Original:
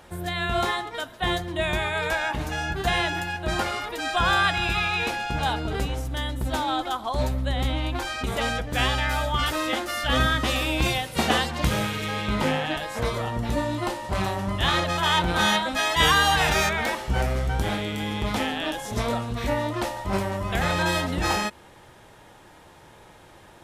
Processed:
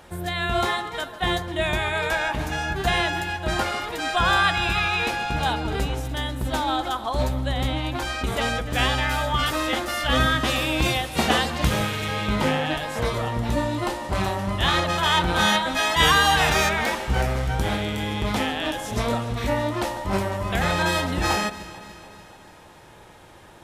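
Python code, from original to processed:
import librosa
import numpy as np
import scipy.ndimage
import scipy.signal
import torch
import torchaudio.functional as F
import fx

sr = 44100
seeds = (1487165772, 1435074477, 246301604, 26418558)

y = fx.echo_alternate(x, sr, ms=146, hz=1500.0, feedback_pct=74, wet_db=-13.5)
y = y * 10.0 ** (1.5 / 20.0)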